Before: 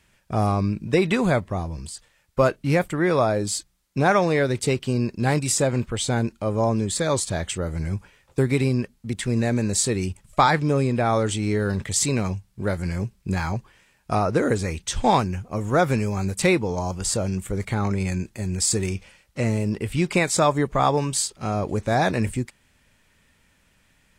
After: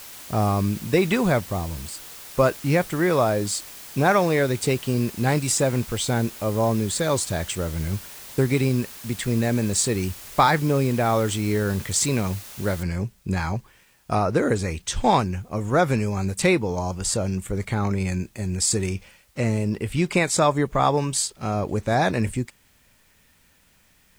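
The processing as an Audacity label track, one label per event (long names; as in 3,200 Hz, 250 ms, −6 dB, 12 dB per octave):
12.830000	12.830000	noise floor change −41 dB −63 dB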